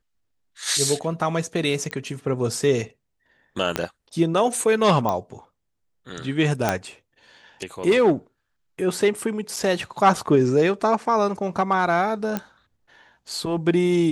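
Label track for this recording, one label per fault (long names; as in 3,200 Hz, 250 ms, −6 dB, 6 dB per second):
1.910000	1.910000	click −15 dBFS
3.760000	3.760000	click −7 dBFS
5.090000	5.090000	click −11 dBFS
6.690000	6.690000	click −6 dBFS
9.560000	9.570000	drop-out 5.1 ms
12.370000	12.370000	click −11 dBFS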